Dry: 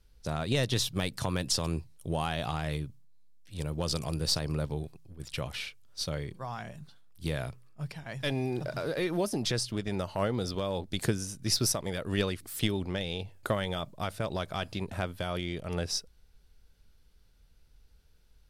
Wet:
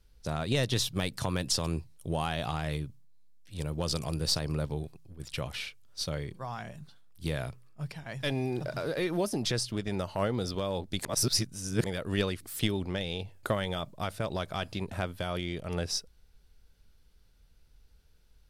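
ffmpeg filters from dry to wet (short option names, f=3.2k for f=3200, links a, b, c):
-filter_complex "[0:a]asplit=3[a][b][c];[a]atrim=end=11.052[d];[b]atrim=start=11.048:end=11.842,asetpts=PTS-STARTPTS,areverse[e];[c]atrim=start=11.838[f];[d][e]acrossfade=d=0.004:c1=hsin:c2=hsin[g];[g][f]acrossfade=d=0.004:c1=hsin:c2=hsin"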